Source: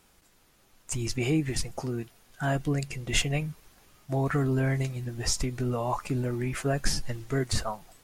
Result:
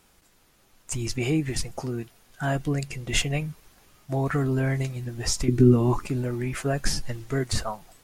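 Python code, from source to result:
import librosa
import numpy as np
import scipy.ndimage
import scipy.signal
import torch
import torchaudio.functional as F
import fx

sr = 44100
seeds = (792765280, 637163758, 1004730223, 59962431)

y = fx.low_shelf_res(x, sr, hz=450.0, db=9.5, q=3.0, at=(5.48, 6.06))
y = y * librosa.db_to_amplitude(1.5)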